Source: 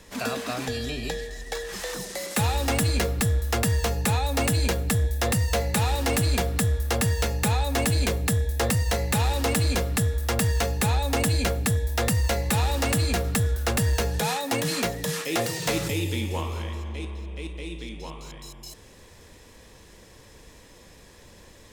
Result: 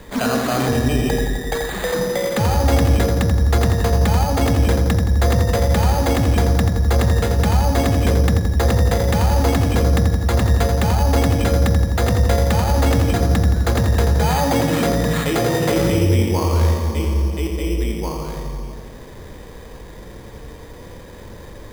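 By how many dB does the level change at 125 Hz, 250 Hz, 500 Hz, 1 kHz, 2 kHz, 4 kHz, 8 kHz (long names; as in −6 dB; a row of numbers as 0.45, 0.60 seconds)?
+9.0, +9.5, +9.0, +7.0, +3.5, +2.0, −0.5 decibels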